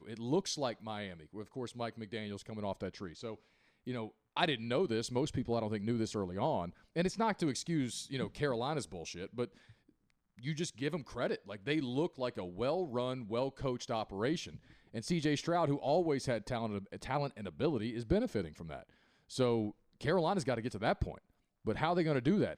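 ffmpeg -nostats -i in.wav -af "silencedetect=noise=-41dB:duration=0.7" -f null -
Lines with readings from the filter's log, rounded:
silence_start: 9.45
silence_end: 10.39 | silence_duration: 0.94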